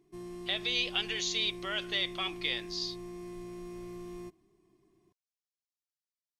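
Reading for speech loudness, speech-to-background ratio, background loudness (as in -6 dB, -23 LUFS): -32.5 LUFS, 11.5 dB, -44.0 LUFS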